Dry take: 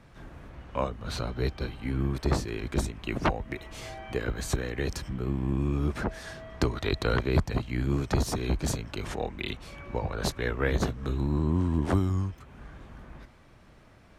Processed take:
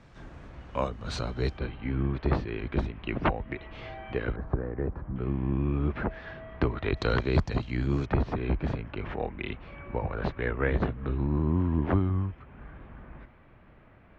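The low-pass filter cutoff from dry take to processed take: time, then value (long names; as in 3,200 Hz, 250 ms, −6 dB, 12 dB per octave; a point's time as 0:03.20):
low-pass filter 24 dB per octave
7,900 Hz
from 0:01.58 3,200 Hz
from 0:04.36 1,300 Hz
from 0:05.16 2,900 Hz
from 0:06.97 5,900 Hz
from 0:08.06 2,700 Hz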